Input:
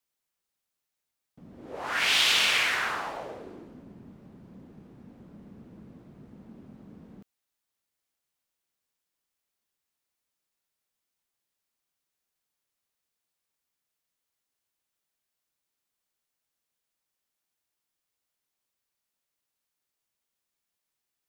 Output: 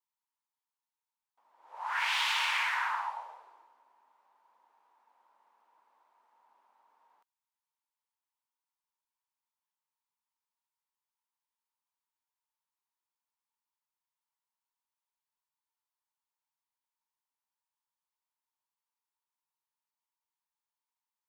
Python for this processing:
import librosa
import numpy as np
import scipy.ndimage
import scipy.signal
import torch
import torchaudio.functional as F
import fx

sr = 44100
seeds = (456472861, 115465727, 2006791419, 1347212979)

y = fx.dynamic_eq(x, sr, hz=1900.0, q=1.1, threshold_db=-38.0, ratio=4.0, max_db=6)
y = fx.ladder_highpass(y, sr, hz=880.0, resonance_pct=80)